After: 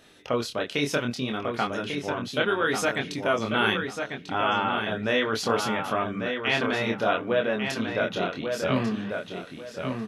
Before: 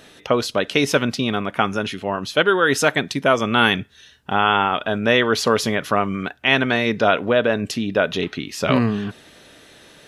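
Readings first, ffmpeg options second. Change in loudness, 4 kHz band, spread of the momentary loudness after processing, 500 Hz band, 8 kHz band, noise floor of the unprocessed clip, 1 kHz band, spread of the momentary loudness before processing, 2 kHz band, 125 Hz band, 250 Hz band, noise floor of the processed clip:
−7.0 dB, −7.5 dB, 7 LU, −6.5 dB, −8.0 dB, −49 dBFS, −7.0 dB, 8 LU, −7.0 dB, −7.0 dB, −7.0 dB, −44 dBFS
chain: -filter_complex "[0:a]flanger=delay=22.5:depth=5.7:speed=0.68,asplit=2[link_01][link_02];[link_02]adelay=1144,lowpass=frequency=3900:poles=1,volume=-5.5dB,asplit=2[link_03][link_04];[link_04]adelay=1144,lowpass=frequency=3900:poles=1,volume=0.28,asplit=2[link_05][link_06];[link_06]adelay=1144,lowpass=frequency=3900:poles=1,volume=0.28,asplit=2[link_07][link_08];[link_08]adelay=1144,lowpass=frequency=3900:poles=1,volume=0.28[link_09];[link_01][link_03][link_05][link_07][link_09]amix=inputs=5:normalize=0,volume=-5dB"

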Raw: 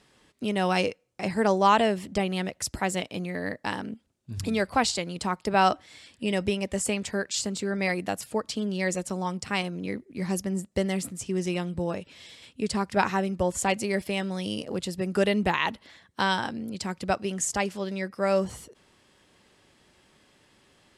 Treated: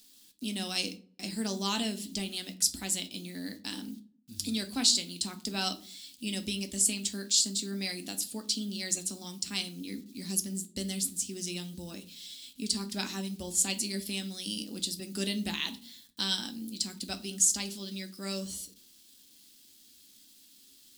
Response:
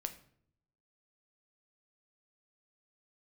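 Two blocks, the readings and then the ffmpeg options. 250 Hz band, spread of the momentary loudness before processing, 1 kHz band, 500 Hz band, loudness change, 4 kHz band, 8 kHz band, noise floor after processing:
−7.0 dB, 10 LU, −17.5 dB, −15.5 dB, −3.5 dB, +3.0 dB, +5.5 dB, −59 dBFS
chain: -filter_complex "[0:a]acrusher=bits=9:mix=0:aa=0.000001,equalizer=frequency=125:width_type=o:width=1:gain=-11,equalizer=frequency=250:width_type=o:width=1:gain=11,equalizer=frequency=500:width_type=o:width=1:gain=-9,equalizer=frequency=1000:width_type=o:width=1:gain=-9,equalizer=frequency=2000:width_type=o:width=1:gain=-7,equalizer=frequency=4000:width_type=o:width=1:gain=8,crystalizer=i=4.5:c=0[link_01];[1:a]atrim=start_sample=2205,asetrate=74970,aresample=44100[link_02];[link_01][link_02]afir=irnorm=-1:irlink=0,volume=-4dB"

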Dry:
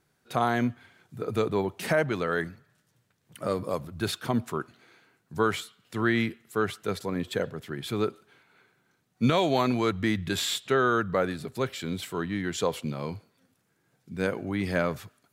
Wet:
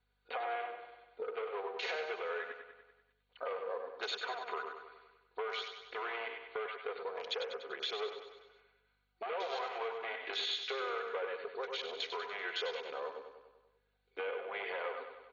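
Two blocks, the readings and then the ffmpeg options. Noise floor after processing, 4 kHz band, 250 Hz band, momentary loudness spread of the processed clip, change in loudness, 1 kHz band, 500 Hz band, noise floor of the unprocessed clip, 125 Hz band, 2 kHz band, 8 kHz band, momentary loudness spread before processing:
−78 dBFS, −4.5 dB, −29.5 dB, 9 LU, −11.0 dB, −9.0 dB, −10.5 dB, −72 dBFS, below −40 dB, −8.0 dB, −19.0 dB, 11 LU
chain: -filter_complex "[0:a]aecho=1:1:4.1:0.72,acrossover=split=660[link_01][link_02];[link_02]alimiter=limit=-23.5dB:level=0:latency=1:release=75[link_03];[link_01][link_03]amix=inputs=2:normalize=0,asplit=2[link_04][link_05];[link_05]adelay=110,highpass=300,lowpass=3400,asoftclip=type=hard:threshold=-19.5dB,volume=-11dB[link_06];[link_04][link_06]amix=inputs=2:normalize=0,volume=24.5dB,asoftclip=hard,volume=-24.5dB,bandreject=frequency=1800:width=10,afftfilt=real='re*between(b*sr/4096,350,4600)':imag='im*between(b*sr/4096,350,4600)':win_size=4096:overlap=0.75,aeval=exprs='val(0)+0.000501*(sin(2*PI*50*n/s)+sin(2*PI*2*50*n/s)/2+sin(2*PI*3*50*n/s)/3+sin(2*PI*4*50*n/s)/4+sin(2*PI*5*50*n/s)/5)':channel_layout=same,afwtdn=0.00891,acompressor=threshold=-45dB:ratio=3,tiltshelf=frequency=1200:gain=-3,asplit=2[link_07][link_08];[link_08]aecho=0:1:97|194|291|388|485|582|679:0.398|0.231|0.134|0.0777|0.0451|0.0261|0.0152[link_09];[link_07][link_09]amix=inputs=2:normalize=0,volume=5dB" -ar 48000 -c:a ac3 -b:a 48k

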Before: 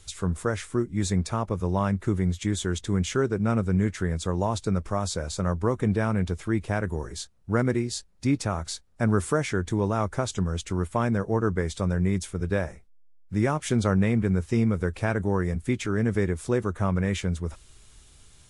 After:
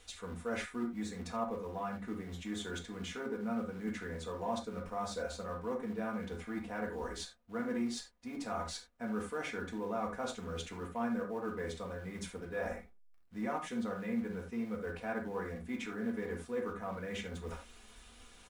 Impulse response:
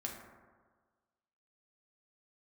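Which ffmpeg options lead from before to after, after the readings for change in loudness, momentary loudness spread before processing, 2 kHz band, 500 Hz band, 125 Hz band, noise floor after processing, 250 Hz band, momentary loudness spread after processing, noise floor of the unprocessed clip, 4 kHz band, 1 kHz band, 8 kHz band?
−13.0 dB, 5 LU, −9.5 dB, −11.0 dB, −22.0 dB, −58 dBFS, −12.0 dB, 6 LU, −53 dBFS, −9.0 dB, −8.5 dB, −13.5 dB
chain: -filter_complex "[0:a]asplit=2[link_01][link_02];[link_02]volume=29dB,asoftclip=hard,volume=-29dB,volume=-9dB[link_03];[link_01][link_03]amix=inputs=2:normalize=0,aecho=1:1:4.1:0.71,areverse,acompressor=threshold=-32dB:ratio=16,areverse,acrusher=bits=6:mode=log:mix=0:aa=0.000001,bass=frequency=250:gain=-12,treble=frequency=4000:gain=-10[link_04];[1:a]atrim=start_sample=2205,atrim=end_sample=4410[link_05];[link_04][link_05]afir=irnorm=-1:irlink=0,volume=1.5dB"

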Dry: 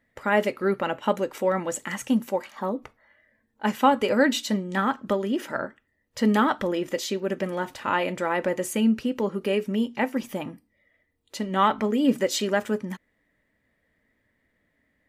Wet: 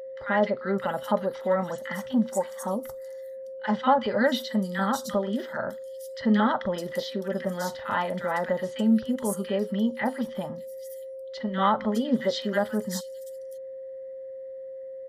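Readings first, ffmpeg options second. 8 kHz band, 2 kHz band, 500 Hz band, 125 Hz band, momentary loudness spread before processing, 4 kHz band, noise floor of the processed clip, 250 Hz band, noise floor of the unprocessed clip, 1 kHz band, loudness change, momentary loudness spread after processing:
−4.5 dB, −3.0 dB, −1.0 dB, 0.0 dB, 10 LU, −3.0 dB, −39 dBFS, −1.5 dB, −73 dBFS, −1.5 dB, −1.5 dB, 16 LU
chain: -filter_complex "[0:a]superequalizer=6b=0.251:7b=0.562:12b=0.251:15b=0.562,acrossover=split=1400|5100[link_01][link_02][link_03];[link_01]adelay=40[link_04];[link_03]adelay=610[link_05];[link_04][link_02][link_05]amix=inputs=3:normalize=0,aeval=exprs='val(0)+0.0158*sin(2*PI*530*n/s)':channel_layout=same"

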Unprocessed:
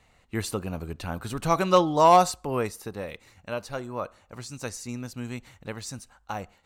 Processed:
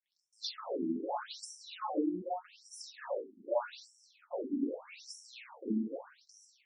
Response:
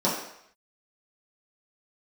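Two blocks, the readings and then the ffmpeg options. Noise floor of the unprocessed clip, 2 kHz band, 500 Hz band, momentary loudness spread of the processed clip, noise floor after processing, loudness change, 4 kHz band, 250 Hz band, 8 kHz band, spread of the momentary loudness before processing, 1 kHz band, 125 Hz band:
−63 dBFS, −14.0 dB, −12.0 dB, 13 LU, −76 dBFS, −12.5 dB, −8.5 dB, −5.0 dB, −14.0 dB, 20 LU, −18.0 dB, −22.0 dB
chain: -filter_complex "[0:a]adynamicequalizer=threshold=0.00355:dfrequency=3700:dqfactor=2.1:tfrequency=3700:tqfactor=2.1:attack=5:release=100:ratio=0.375:range=2.5:mode=boostabove:tftype=bell,acompressor=threshold=-35dB:ratio=8,aeval=exprs='sgn(val(0))*max(abs(val(0))-0.002,0)':channel_layout=same,alimiter=level_in=6.5dB:limit=-24dB:level=0:latency=1:release=138,volume=-6.5dB[link_01];[1:a]atrim=start_sample=2205,afade=type=out:start_time=0.25:duration=0.01,atrim=end_sample=11466,asetrate=42336,aresample=44100[link_02];[link_01][link_02]afir=irnorm=-1:irlink=0,afftfilt=real='re*between(b*sr/1024,260*pow(7700/260,0.5+0.5*sin(2*PI*0.82*pts/sr))/1.41,260*pow(7700/260,0.5+0.5*sin(2*PI*0.82*pts/sr))*1.41)':imag='im*between(b*sr/1024,260*pow(7700/260,0.5+0.5*sin(2*PI*0.82*pts/sr))/1.41,260*pow(7700/260,0.5+0.5*sin(2*PI*0.82*pts/sr))*1.41)':win_size=1024:overlap=0.75,volume=-1.5dB"

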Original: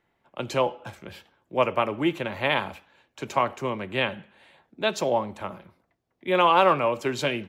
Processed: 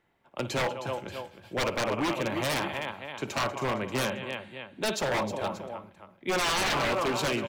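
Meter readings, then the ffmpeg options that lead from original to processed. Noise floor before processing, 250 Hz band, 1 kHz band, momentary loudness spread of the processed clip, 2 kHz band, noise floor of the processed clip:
−74 dBFS, −2.5 dB, −6.5 dB, 12 LU, −1.5 dB, −61 dBFS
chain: -filter_complex "[0:a]asplit=2[link_01][link_02];[link_02]aecho=0:1:56|191|313|582:0.178|0.15|0.282|0.15[link_03];[link_01][link_03]amix=inputs=2:normalize=0,aeval=exprs='0.0794*(abs(mod(val(0)/0.0794+3,4)-2)-1)':channel_layout=same"

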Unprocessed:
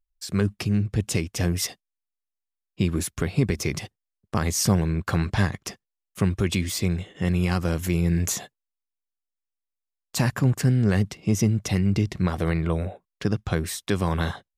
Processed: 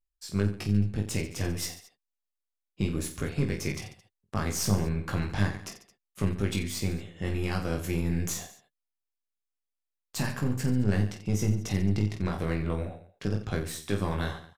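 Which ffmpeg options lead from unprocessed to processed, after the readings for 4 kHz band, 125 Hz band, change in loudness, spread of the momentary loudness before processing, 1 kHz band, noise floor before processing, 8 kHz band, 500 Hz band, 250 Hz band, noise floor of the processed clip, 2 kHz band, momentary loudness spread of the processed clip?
−6.0 dB, −5.5 dB, −5.5 dB, 8 LU, −5.5 dB, below −85 dBFS, −6.0 dB, −5.0 dB, −5.5 dB, below −85 dBFS, −5.0 dB, 9 LU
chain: -af "aeval=exprs='0.299*(cos(1*acos(clip(val(0)/0.299,-1,1)))-cos(1*PI/2))+0.0668*(cos(2*acos(clip(val(0)/0.299,-1,1)))-cos(2*PI/2))+0.0168*(cos(4*acos(clip(val(0)/0.299,-1,1)))-cos(4*PI/2))+0.0266*(cos(6*acos(clip(val(0)/0.299,-1,1)))-cos(6*PI/2))+0.00596*(cos(8*acos(clip(val(0)/0.299,-1,1)))-cos(8*PI/2))':channel_layout=same,aecho=1:1:20|48|87.2|142.1|218.9:0.631|0.398|0.251|0.158|0.1,volume=-8.5dB"

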